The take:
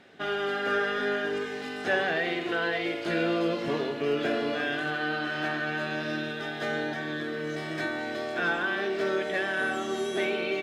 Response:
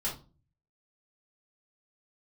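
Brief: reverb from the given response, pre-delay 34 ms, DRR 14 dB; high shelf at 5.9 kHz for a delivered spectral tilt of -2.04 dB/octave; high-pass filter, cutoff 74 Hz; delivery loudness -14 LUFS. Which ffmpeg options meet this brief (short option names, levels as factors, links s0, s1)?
-filter_complex "[0:a]highpass=74,highshelf=f=5900:g=5.5,asplit=2[s0][s1];[1:a]atrim=start_sample=2205,adelay=34[s2];[s1][s2]afir=irnorm=-1:irlink=0,volume=0.126[s3];[s0][s3]amix=inputs=2:normalize=0,volume=5.62"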